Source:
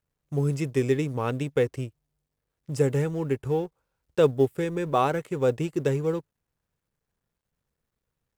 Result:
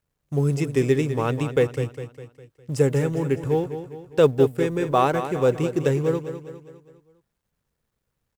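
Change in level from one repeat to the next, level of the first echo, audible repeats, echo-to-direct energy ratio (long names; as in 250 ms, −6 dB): −6.5 dB, −10.5 dB, 4, −9.5 dB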